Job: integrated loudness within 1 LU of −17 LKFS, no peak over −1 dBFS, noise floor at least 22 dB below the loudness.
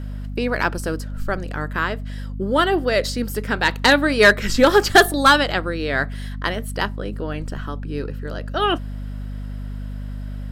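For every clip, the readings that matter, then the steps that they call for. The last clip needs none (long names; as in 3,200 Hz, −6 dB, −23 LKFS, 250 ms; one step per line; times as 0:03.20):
mains hum 50 Hz; hum harmonics up to 250 Hz; level of the hum −27 dBFS; integrated loudness −20.0 LKFS; sample peak −3.5 dBFS; target loudness −17.0 LKFS
→ hum removal 50 Hz, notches 5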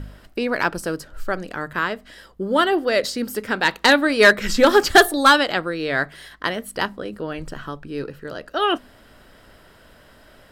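mains hum none found; integrated loudness −19.5 LKFS; sample peak −4.0 dBFS; target loudness −17.0 LKFS
→ level +2.5 dB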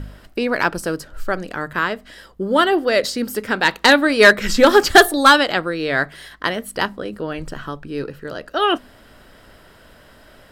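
integrated loudness −17.0 LKFS; sample peak −1.5 dBFS; background noise floor −48 dBFS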